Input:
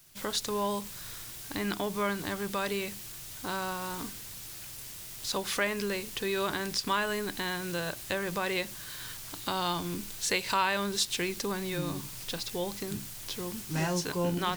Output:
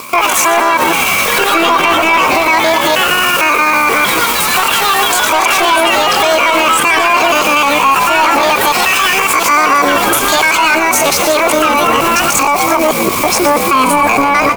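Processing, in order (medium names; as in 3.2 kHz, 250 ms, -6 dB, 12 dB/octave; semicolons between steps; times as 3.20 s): time reversed locally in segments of 156 ms; high-pass 400 Hz 6 dB/octave; tilt shelf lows +4.5 dB, about 1.1 kHz; band-stop 1.1 kHz, Q 12; in parallel at +1 dB: compression 12:1, threshold -41 dBFS, peak gain reduction 17.5 dB; on the sum: saturation -31 dBFS, distortion -9 dB; small resonant body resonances 680/1400 Hz, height 18 dB, ringing for 35 ms; pitch shift +8.5 st; on a send: frequency-shifting echo 121 ms, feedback 53%, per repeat -82 Hz, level -11 dB; on the sum: ever faster or slower copies 93 ms, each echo +3 st, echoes 3, each echo -6 dB; loudness maximiser +27.5 dB; trim -1 dB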